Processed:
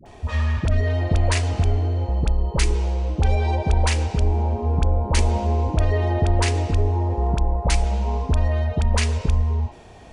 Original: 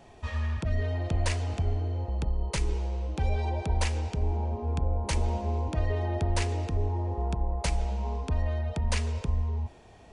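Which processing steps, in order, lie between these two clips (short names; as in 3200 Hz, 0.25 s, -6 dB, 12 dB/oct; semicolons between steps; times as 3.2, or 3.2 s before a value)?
dispersion highs, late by 59 ms, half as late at 730 Hz; gain +8.5 dB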